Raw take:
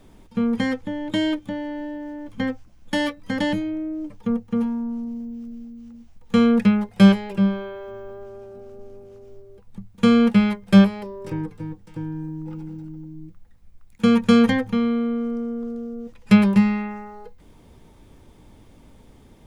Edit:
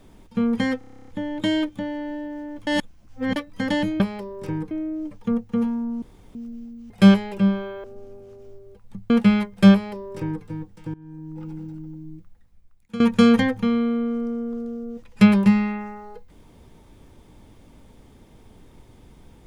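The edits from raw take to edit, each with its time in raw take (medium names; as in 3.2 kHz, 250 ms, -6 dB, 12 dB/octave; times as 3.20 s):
0.78 s: stutter 0.03 s, 11 plays
2.37–3.06 s: reverse
5.01–5.34 s: room tone
5.89–6.88 s: delete
7.82–8.67 s: delete
9.93–10.20 s: delete
10.83–11.54 s: copy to 3.70 s
12.04–12.63 s: fade in linear, from -20.5 dB
13.18–14.10 s: fade out, to -16 dB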